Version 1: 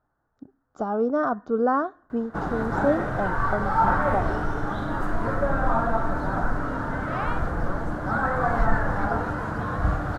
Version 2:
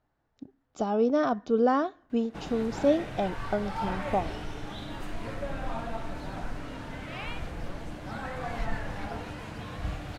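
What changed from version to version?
background -10.0 dB; master: add resonant high shelf 1.9 kHz +10 dB, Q 3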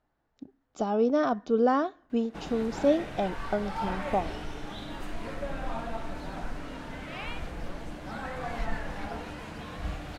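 master: add peaking EQ 110 Hz -14.5 dB 0.26 oct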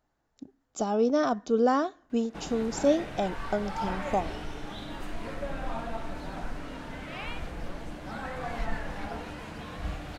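speech: remove low-pass 3.8 kHz 12 dB/octave

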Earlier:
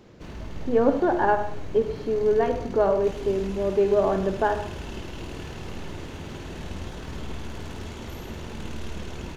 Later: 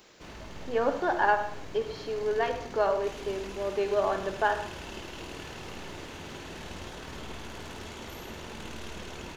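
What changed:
speech: add tilt EQ +3.5 dB/octave; master: add bass shelf 300 Hz -10.5 dB

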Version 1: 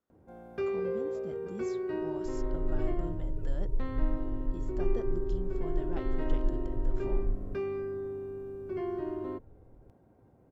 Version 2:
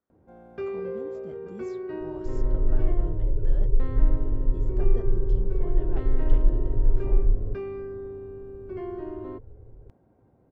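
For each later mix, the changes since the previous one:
second sound +10.0 dB; master: add treble shelf 5.4 kHz -10.5 dB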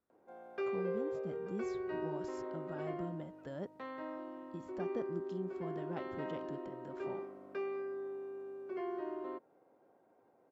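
first sound: add high-pass 480 Hz 12 dB/octave; second sound: muted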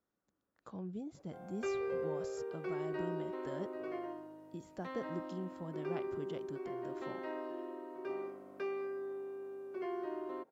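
background: entry +1.05 s; master: add treble shelf 5.4 kHz +10.5 dB

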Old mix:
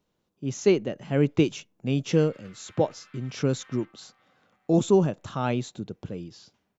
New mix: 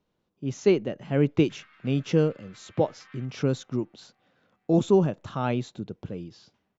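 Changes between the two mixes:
background: entry -0.60 s; master: add distance through air 89 m

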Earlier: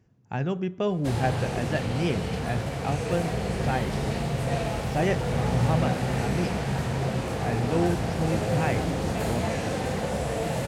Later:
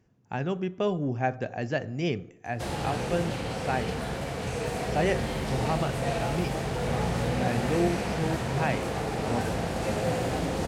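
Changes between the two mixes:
background: entry +1.55 s; master: add peaking EQ 110 Hz -5 dB 1.5 oct

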